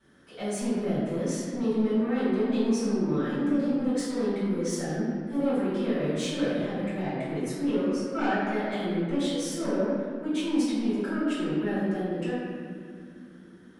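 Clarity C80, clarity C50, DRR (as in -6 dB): -0.5 dB, -2.5 dB, -13.5 dB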